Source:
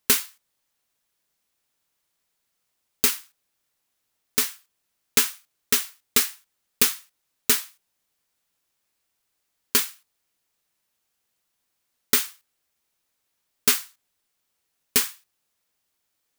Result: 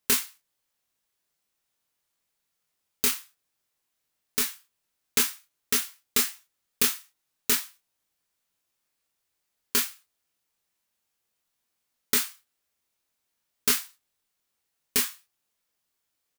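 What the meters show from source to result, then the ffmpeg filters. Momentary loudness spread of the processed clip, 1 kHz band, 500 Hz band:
10 LU, -3.0 dB, -3.5 dB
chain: -af "aecho=1:1:24|37:0.596|0.335,volume=0.562"

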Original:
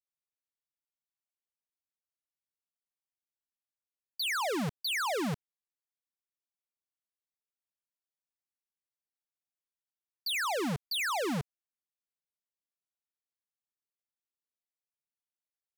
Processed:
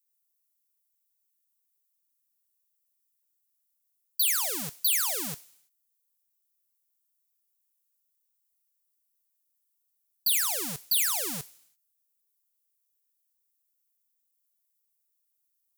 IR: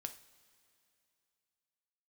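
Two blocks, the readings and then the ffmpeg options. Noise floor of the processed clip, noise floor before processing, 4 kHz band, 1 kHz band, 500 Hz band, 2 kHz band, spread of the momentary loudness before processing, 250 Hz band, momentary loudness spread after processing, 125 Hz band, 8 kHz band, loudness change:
-77 dBFS, under -85 dBFS, +3.0 dB, -6.5 dB, -8.0 dB, -3.0 dB, 9 LU, -8.5 dB, 12 LU, -8.5 dB, +13.5 dB, +6.5 dB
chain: -filter_complex "[0:a]asplit=2[s0][s1];[s1]aderivative[s2];[1:a]atrim=start_sample=2205,afade=t=out:st=0.4:d=0.01,atrim=end_sample=18081[s3];[s2][s3]afir=irnorm=-1:irlink=0,volume=2.82[s4];[s0][s4]amix=inputs=2:normalize=0,crystalizer=i=3.5:c=0,volume=0.376"

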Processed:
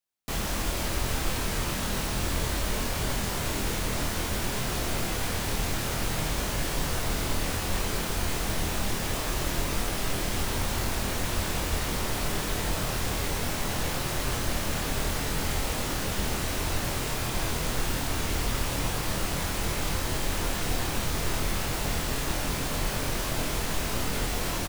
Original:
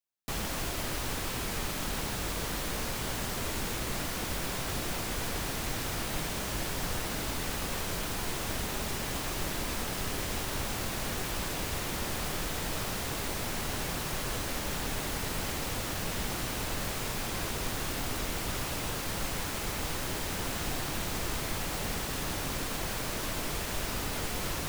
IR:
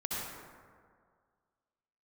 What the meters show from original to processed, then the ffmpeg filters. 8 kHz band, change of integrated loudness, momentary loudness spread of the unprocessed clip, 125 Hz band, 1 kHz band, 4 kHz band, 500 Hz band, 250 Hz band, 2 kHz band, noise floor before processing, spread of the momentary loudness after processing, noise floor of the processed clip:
+3.5 dB, +4.0 dB, 0 LU, +6.0 dB, +4.0 dB, +3.5 dB, +4.5 dB, +4.5 dB, +3.5 dB, -35 dBFS, 1 LU, -31 dBFS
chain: -filter_complex "[0:a]asplit=2[s0][s1];[s1]adelay=25,volume=0.708[s2];[s0][s2]amix=inputs=2:normalize=0,asplit=2[s3][s4];[1:a]atrim=start_sample=2205,asetrate=22932,aresample=44100,lowshelf=f=110:g=9.5[s5];[s4][s5]afir=irnorm=-1:irlink=0,volume=0.168[s6];[s3][s6]amix=inputs=2:normalize=0"

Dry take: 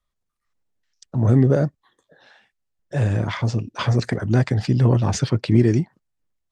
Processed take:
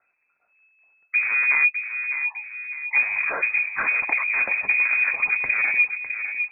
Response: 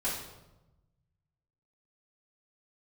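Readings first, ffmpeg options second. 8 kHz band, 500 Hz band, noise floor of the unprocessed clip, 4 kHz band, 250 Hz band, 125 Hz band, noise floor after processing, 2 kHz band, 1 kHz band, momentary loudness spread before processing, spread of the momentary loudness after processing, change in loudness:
under -40 dB, -17.5 dB, -78 dBFS, under -40 dB, under -30 dB, under -40 dB, -70 dBFS, +17.5 dB, -1.0 dB, 8 LU, 8 LU, 0.0 dB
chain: -filter_complex "[0:a]adynamicequalizer=threshold=0.0316:dfrequency=240:dqfactor=1.1:tfrequency=240:tqfactor=1.1:attack=5:release=100:ratio=0.375:range=3:mode=cutabove:tftype=bell,asplit=2[s0][s1];[s1]aeval=exprs='0.473*sin(PI/2*3.98*val(0)/0.473)':c=same,volume=0.501[s2];[s0][s2]amix=inputs=2:normalize=0,acompressor=threshold=0.224:ratio=10,afftdn=nr=25:nf=-36,acrusher=bits=6:mode=log:mix=0:aa=0.000001,lowshelf=f=110:t=q:w=3:g=-11,acompressor=mode=upward:threshold=0.0158:ratio=2.5,asplit=2[s3][s4];[s4]adelay=605,lowpass=f=980:p=1,volume=0.447,asplit=2[s5][s6];[s6]adelay=605,lowpass=f=980:p=1,volume=0.52,asplit=2[s7][s8];[s8]adelay=605,lowpass=f=980:p=1,volume=0.52,asplit=2[s9][s10];[s10]adelay=605,lowpass=f=980:p=1,volume=0.52,asplit=2[s11][s12];[s12]adelay=605,lowpass=f=980:p=1,volume=0.52,asplit=2[s13][s14];[s14]adelay=605,lowpass=f=980:p=1,volume=0.52[s15];[s3][s5][s7][s9][s11][s13][s15]amix=inputs=7:normalize=0,lowpass=f=2200:t=q:w=0.5098,lowpass=f=2200:t=q:w=0.6013,lowpass=f=2200:t=q:w=0.9,lowpass=f=2200:t=q:w=2.563,afreqshift=-2600,volume=0.447"

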